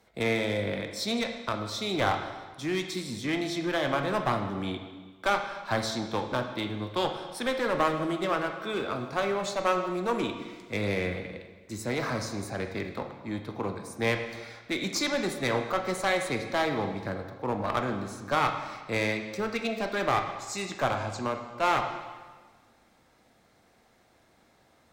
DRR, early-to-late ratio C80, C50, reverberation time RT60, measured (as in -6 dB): 4.5 dB, 8.5 dB, 7.0 dB, 1.4 s